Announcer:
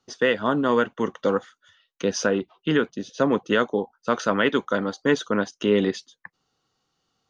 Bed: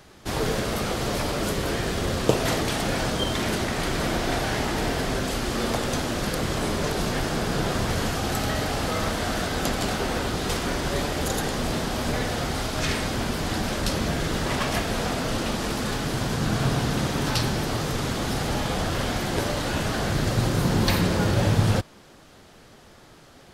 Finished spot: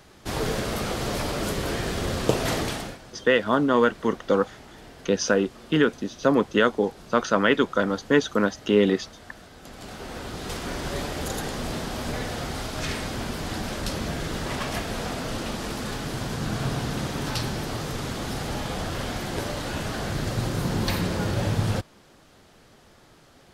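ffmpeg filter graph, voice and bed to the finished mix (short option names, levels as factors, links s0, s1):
-filter_complex "[0:a]adelay=3050,volume=1.12[s0];[1:a]volume=5.62,afade=t=out:st=2.63:d=0.35:silence=0.112202,afade=t=in:st=9.62:d=1.23:silence=0.149624[s1];[s0][s1]amix=inputs=2:normalize=0"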